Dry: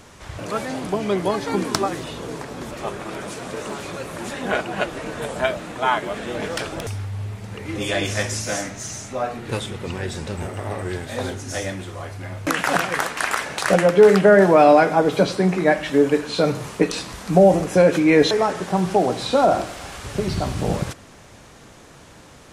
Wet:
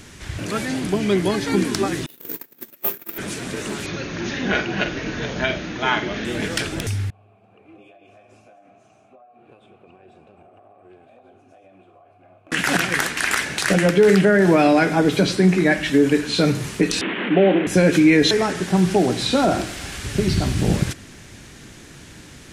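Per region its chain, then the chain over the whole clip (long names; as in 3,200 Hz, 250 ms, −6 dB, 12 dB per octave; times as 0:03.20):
0:02.06–0:03.18: noise gate −30 dBFS, range −32 dB + high-pass filter 260 Hz + bad sample-rate conversion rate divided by 3×, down none, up zero stuff
0:03.86–0:06.25: linear-phase brick-wall low-pass 6,800 Hz + flutter between parallel walls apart 7.9 metres, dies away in 0.3 s
0:07.10–0:12.52: formant filter a + downward compressor 12 to 1, threshold −42 dBFS + drawn EQ curve 660 Hz 0 dB, 5,600 Hz −17 dB, 9,600 Hz −8 dB
0:17.01–0:17.67: linear delta modulator 16 kbit/s, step −18.5 dBFS + high-pass filter 250 Hz 24 dB per octave + tilt shelving filter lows +4 dB, about 680 Hz
whole clip: flat-topped bell 770 Hz −9 dB; boost into a limiter +10 dB; level −5 dB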